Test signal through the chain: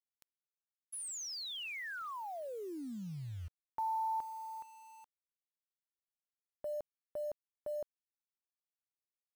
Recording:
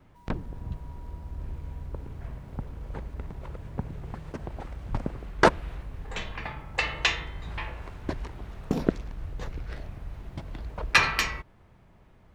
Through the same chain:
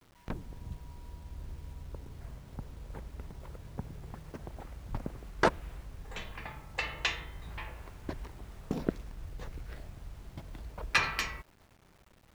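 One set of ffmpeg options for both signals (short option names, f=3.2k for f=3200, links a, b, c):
-af "acrusher=bits=8:mix=0:aa=0.000001,volume=-7dB"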